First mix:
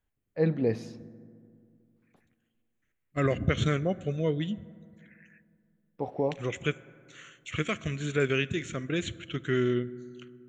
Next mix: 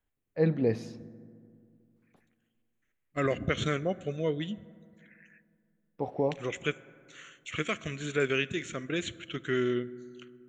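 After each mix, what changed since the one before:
second voice: add bell 83 Hz -8.5 dB 2.4 oct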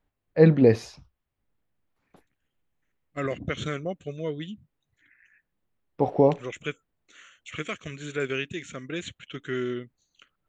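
first voice +11.0 dB; reverb: off

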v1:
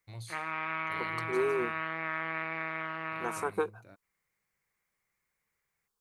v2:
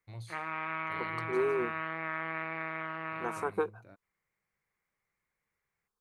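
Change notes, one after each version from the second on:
master: add high shelf 3500 Hz -9 dB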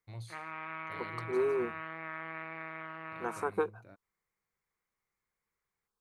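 background -5.5 dB

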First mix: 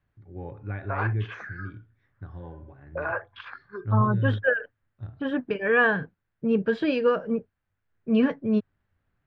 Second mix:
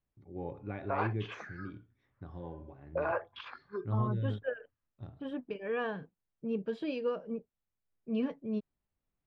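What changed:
second voice -10.5 dB; master: add fifteen-band EQ 100 Hz -11 dB, 1600 Hz -10 dB, 10000 Hz +10 dB

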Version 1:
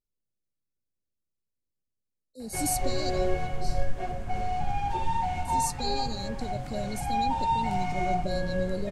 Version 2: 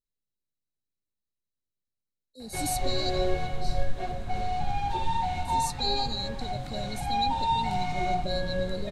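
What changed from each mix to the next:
speech -3.5 dB; master: add bell 3900 Hz +13.5 dB 0.25 oct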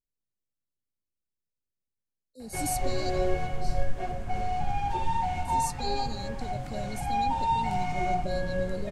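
master: add bell 3900 Hz -13.5 dB 0.25 oct

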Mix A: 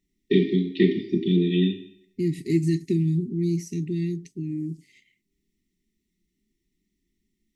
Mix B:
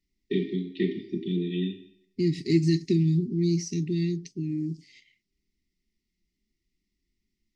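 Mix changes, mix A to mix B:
first voice -7.5 dB; second voice: add synth low-pass 5100 Hz, resonance Q 3.4

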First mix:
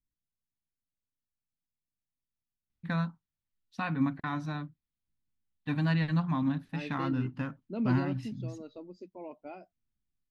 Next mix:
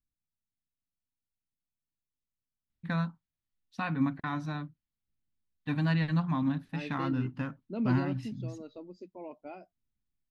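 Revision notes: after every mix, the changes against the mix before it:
none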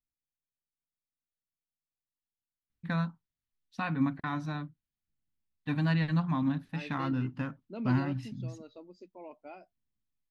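second voice: add low shelf 420 Hz -8 dB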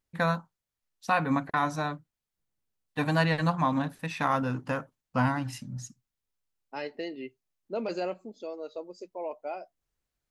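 first voice: entry -2.70 s; master: remove EQ curve 270 Hz 0 dB, 480 Hz -14 dB, 1800 Hz -7 dB, 3800 Hz -6 dB, 7700 Hz -19 dB

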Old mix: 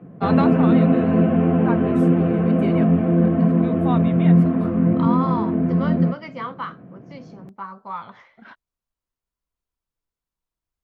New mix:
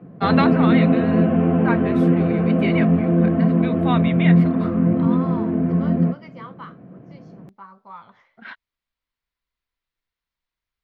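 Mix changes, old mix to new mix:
first voice: add graphic EQ 2000/4000/8000 Hz +11/+9/-7 dB; second voice -8.5 dB

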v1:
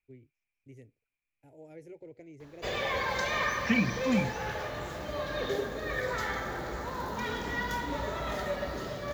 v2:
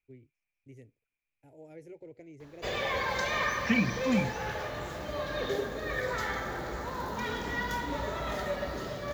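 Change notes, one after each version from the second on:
none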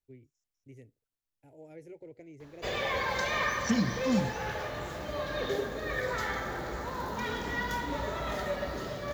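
second voice: remove synth low-pass 2400 Hz, resonance Q 14

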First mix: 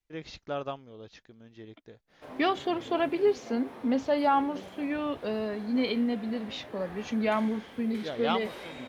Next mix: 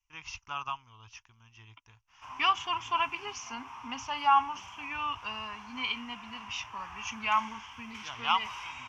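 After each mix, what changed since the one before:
master: add EQ curve 110 Hz 0 dB, 170 Hz -17 dB, 240 Hz -17 dB, 550 Hz -27 dB, 990 Hz +11 dB, 1800 Hz -5 dB, 2800 Hz +11 dB, 4000 Hz -12 dB, 5800 Hz +11 dB, 9600 Hz -11 dB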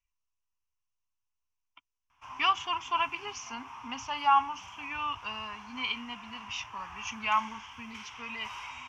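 first voice: muted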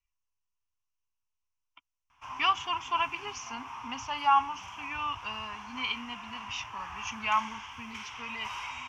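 background +3.5 dB

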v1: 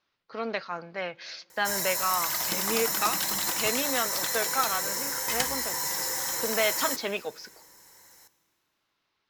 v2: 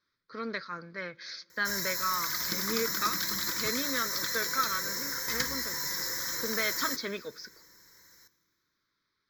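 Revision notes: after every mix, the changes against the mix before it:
master: add fixed phaser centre 2800 Hz, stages 6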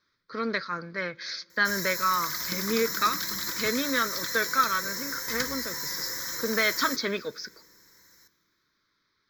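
speech +6.5 dB

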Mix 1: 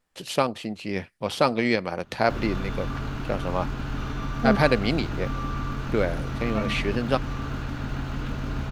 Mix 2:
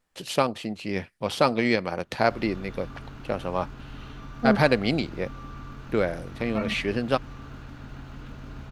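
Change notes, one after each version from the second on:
background -10.5 dB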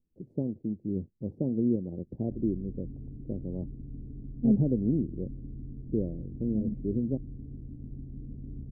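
master: add inverse Chebyshev low-pass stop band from 1200 Hz, stop band 60 dB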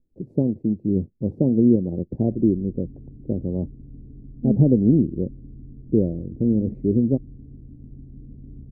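first voice +10.5 dB

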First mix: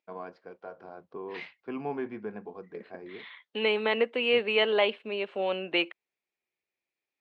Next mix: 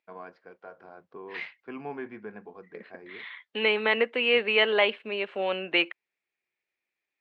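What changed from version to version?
first voice -4.0 dB; master: add bell 1800 Hz +6.5 dB 1.2 oct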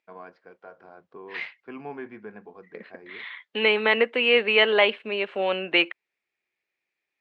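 second voice +3.5 dB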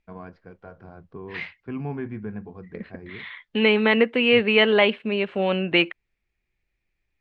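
master: remove HPF 420 Hz 12 dB/oct

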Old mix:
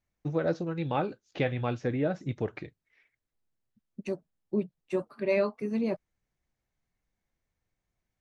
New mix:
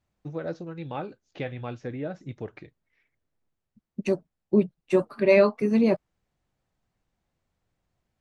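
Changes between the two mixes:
first voice -4.5 dB; second voice +8.5 dB

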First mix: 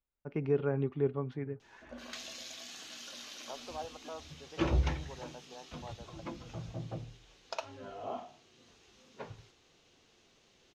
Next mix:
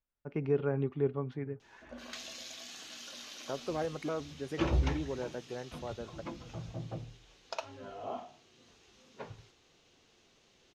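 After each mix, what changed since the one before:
second voice: remove band-pass 860 Hz, Q 2.9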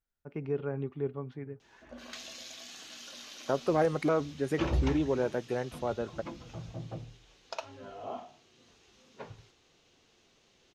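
first voice -3.0 dB; second voice +8.5 dB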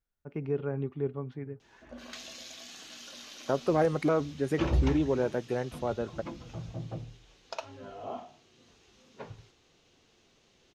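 master: add low shelf 370 Hz +3 dB

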